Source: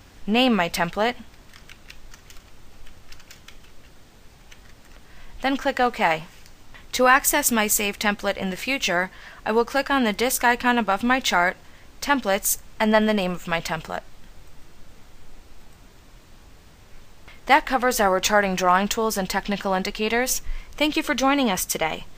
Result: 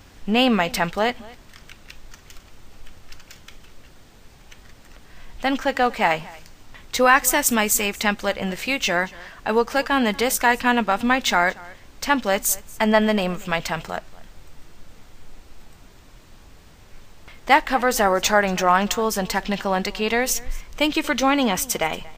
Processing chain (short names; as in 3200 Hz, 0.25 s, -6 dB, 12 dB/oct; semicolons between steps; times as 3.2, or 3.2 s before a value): echo 0.233 s -22 dB; gain +1 dB